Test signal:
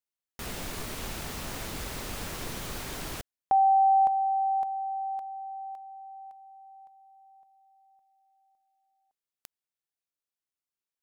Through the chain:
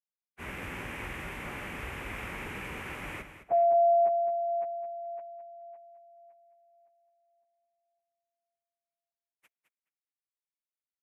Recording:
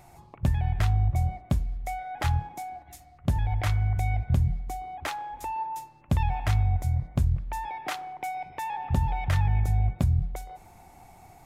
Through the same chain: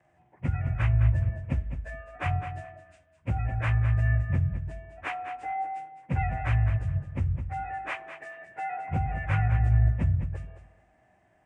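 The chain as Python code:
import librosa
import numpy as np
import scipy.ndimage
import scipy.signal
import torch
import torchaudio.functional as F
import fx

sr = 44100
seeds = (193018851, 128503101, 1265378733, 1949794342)

p1 = fx.partial_stretch(x, sr, pct=89)
p2 = scipy.signal.sosfilt(scipy.signal.butter(2, 40.0, 'highpass', fs=sr, output='sos'), p1)
p3 = fx.high_shelf_res(p2, sr, hz=3200.0, db=-11.0, q=3.0)
p4 = fx.notch(p3, sr, hz=670.0, q=13.0)
p5 = p4 + fx.echo_feedback(p4, sr, ms=212, feedback_pct=23, wet_db=-8.5, dry=0)
y = fx.band_widen(p5, sr, depth_pct=40)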